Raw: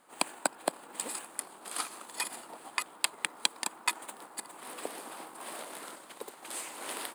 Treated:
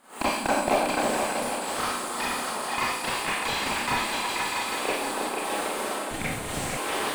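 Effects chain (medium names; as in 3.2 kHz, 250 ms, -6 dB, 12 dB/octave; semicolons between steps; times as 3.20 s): rattle on loud lows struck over -46 dBFS, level -19 dBFS; delay with an opening low-pass 161 ms, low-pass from 200 Hz, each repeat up 2 oct, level 0 dB; Schroeder reverb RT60 0.52 s, combs from 29 ms, DRR -8 dB; 6.11–6.77 s: frequency shift -290 Hz; slew-rate limiter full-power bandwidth 82 Hz; trim +4 dB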